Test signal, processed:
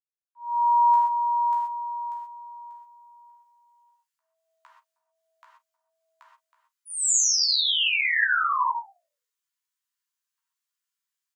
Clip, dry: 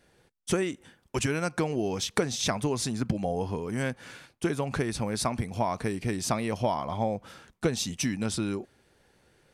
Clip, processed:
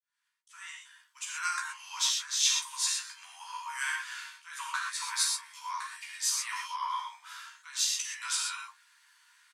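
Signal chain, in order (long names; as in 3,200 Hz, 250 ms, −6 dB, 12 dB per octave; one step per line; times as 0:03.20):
fade in at the beginning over 1.59 s
parametric band 7,000 Hz +4 dB 0.24 octaves
volume swells 211 ms
Chebyshev high-pass filter 940 Hz, order 8
ambience of single reflections 14 ms −3.5 dB, 47 ms −16.5 dB
reverb whose tail is shaped and stops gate 150 ms flat, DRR −2 dB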